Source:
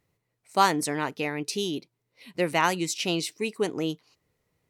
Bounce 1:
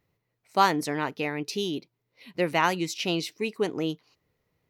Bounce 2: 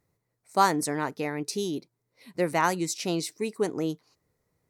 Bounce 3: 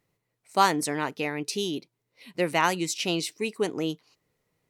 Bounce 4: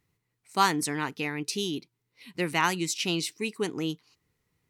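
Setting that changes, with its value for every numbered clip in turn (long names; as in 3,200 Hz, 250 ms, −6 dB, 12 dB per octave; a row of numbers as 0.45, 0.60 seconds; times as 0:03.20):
parametric band, centre frequency: 8,600, 2,900, 71, 590 Hertz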